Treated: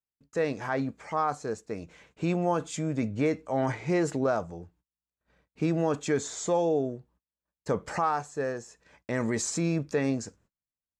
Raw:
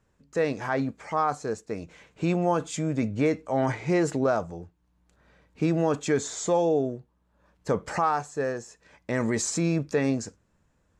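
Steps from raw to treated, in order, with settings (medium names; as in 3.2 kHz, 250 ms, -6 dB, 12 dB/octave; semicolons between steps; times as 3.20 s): gate -58 dBFS, range -33 dB; trim -2.5 dB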